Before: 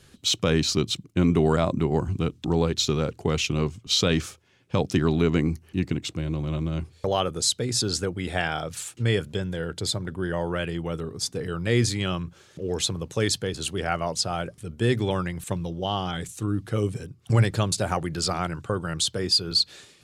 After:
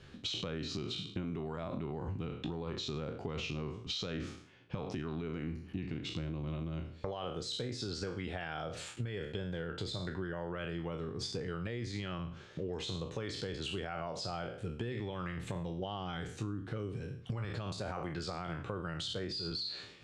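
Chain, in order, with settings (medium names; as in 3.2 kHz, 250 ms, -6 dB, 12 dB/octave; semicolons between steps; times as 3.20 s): spectral sustain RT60 0.42 s; peak limiter -17.5 dBFS, peak gain reduction 11 dB; low-pass 3.6 kHz 12 dB/octave; compression 10:1, threshold -34 dBFS, peak gain reduction 13 dB; trim -1 dB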